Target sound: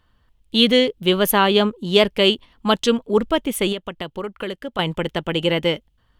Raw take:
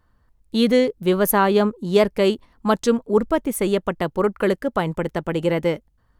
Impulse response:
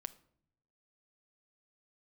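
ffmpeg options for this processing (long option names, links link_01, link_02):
-filter_complex "[0:a]equalizer=frequency=3100:width=1.9:gain=14.5,asettb=1/sr,asplit=3[link_01][link_02][link_03];[link_01]atrim=end=3.724[link_04];[link_02]atrim=start=3.72:end=4.79,asetpts=PTS-STARTPTS,afade=type=in:duration=0.004:curve=qsin,afade=type=out:start_time=1.066:duration=0.004:curve=qsin,acompressor=threshold=-28dB:ratio=3[link_05];[link_03]atrim=start=4.786[link_06];[link_04][link_05]acrossfade=duration=0.004:curve1=hsin:curve2=qsin[link_07];[link_07][link_06]acrossfade=duration=0.004:curve1=qsin:curve2=hsin"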